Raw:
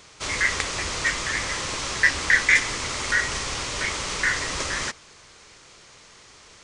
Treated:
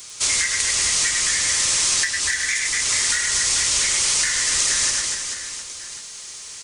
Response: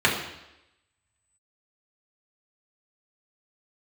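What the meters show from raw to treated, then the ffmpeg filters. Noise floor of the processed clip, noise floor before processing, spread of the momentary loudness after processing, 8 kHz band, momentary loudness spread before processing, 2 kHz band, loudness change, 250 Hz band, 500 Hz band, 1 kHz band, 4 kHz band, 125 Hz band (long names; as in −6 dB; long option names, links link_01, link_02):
−37 dBFS, −50 dBFS, 14 LU, +13.5 dB, 9 LU, −2.0 dB, +5.0 dB, −6.0 dB, −5.5 dB, −3.5 dB, +8.0 dB, −5.0 dB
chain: -filter_complex "[0:a]highshelf=frequency=3600:gain=9.5,aecho=1:1:100|240|436|710.4|1095:0.631|0.398|0.251|0.158|0.1,acrossover=split=160|1200|3900[link_01][link_02][link_03][link_04];[link_02]asoftclip=type=hard:threshold=-30.5dB[link_05];[link_03]aecho=1:1:5.7:0.65[link_06];[link_01][link_05][link_06][link_04]amix=inputs=4:normalize=0,acompressor=threshold=-21dB:ratio=10,aemphasis=mode=production:type=75fm,volume=-2dB"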